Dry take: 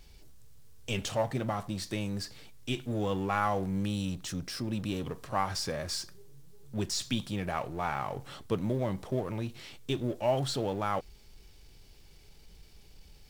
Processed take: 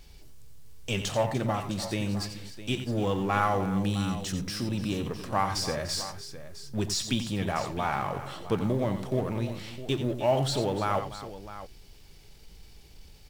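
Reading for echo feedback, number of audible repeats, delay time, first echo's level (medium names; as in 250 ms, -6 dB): no regular repeats, 3, 89 ms, -9.5 dB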